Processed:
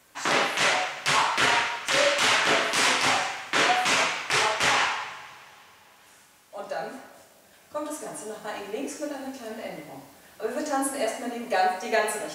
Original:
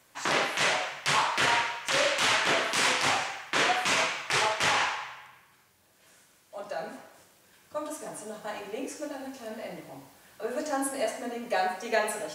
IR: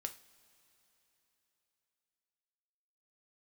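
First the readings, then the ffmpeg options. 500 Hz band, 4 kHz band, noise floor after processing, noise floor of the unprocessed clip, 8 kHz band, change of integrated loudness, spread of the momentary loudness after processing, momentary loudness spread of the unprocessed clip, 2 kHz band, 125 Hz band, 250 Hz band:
+3.0 dB, +3.0 dB, -56 dBFS, -62 dBFS, +3.5 dB, +3.5 dB, 16 LU, 16 LU, +3.0 dB, +1.0 dB, +3.5 dB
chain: -filter_complex "[1:a]atrim=start_sample=2205[a];[0:a][a]afir=irnorm=-1:irlink=0,volume=5.5dB"

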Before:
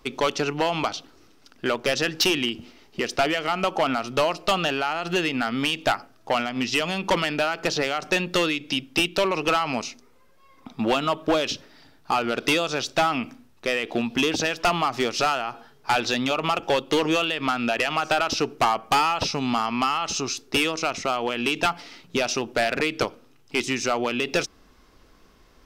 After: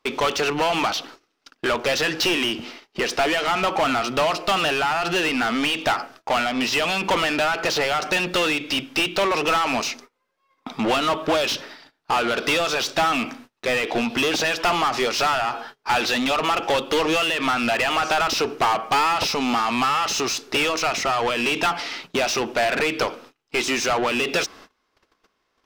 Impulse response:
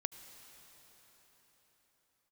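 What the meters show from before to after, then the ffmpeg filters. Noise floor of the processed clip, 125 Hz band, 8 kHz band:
-72 dBFS, -1.5 dB, +3.0 dB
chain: -filter_complex "[0:a]agate=range=-26dB:threshold=-49dB:ratio=16:detection=peak,asplit=2[a][b];[b]highpass=f=720:p=1,volume=22dB,asoftclip=type=tanh:threshold=-15dB[c];[a][c]amix=inputs=2:normalize=0,lowpass=f=4.1k:p=1,volume=-6dB"

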